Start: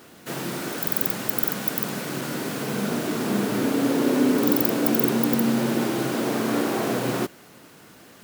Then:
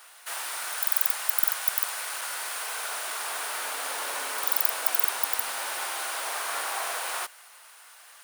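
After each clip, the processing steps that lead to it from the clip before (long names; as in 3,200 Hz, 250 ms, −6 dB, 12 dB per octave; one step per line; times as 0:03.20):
high-pass filter 810 Hz 24 dB per octave
parametric band 9,400 Hz +10 dB 0.23 octaves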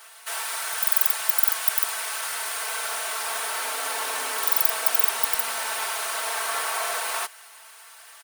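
comb filter 4.5 ms, depth 70%
level +2 dB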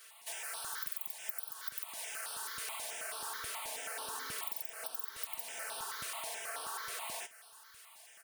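flanger 0.41 Hz, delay 7.8 ms, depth 5.8 ms, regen −70%
downward compressor 10 to 1, threshold −32 dBFS, peak gain reduction 14 dB
step-sequenced phaser 9.3 Hz 220–7,000 Hz
level −3 dB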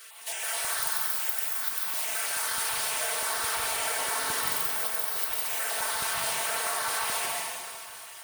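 dense smooth reverb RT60 2.1 s, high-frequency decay 0.95×, pre-delay 115 ms, DRR −2.5 dB
level +8 dB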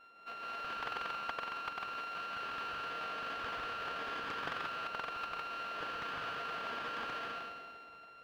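samples sorted by size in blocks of 32 samples
high-frequency loss of the air 400 metres
highs frequency-modulated by the lows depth 0.64 ms
level −6 dB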